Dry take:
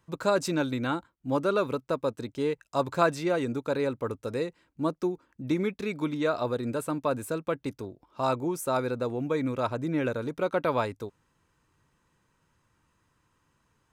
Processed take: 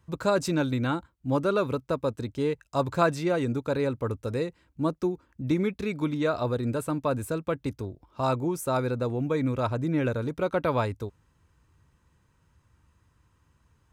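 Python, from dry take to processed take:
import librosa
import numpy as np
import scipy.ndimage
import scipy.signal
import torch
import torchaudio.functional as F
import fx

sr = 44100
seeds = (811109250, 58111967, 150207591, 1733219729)

y = fx.peak_eq(x, sr, hz=66.0, db=14.5, octaves=1.7)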